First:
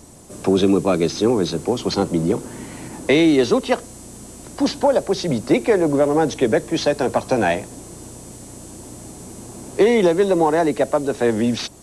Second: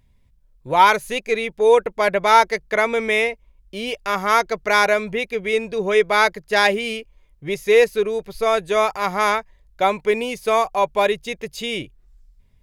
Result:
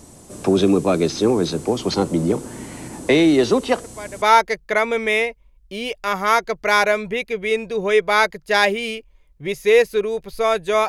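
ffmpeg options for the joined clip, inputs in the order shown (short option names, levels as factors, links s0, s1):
-filter_complex "[1:a]asplit=2[s0][s1];[0:a]apad=whole_dur=10.88,atrim=end=10.88,atrim=end=4.222[s2];[s1]atrim=start=2.238:end=8.9[s3];[s0]atrim=start=1.83:end=2.24,asetpts=PTS-STARTPTS,volume=0.178,afade=t=in:d=0.004:c=hsin,afade=t=out:st=0.406:d=0.004:c=hsin,adelay=168021S[s4];[s2][s3]acrossfade=d=0.004:c1=hsin:c2=hsin[s5];[s5][s4]amix=inputs=2:normalize=0"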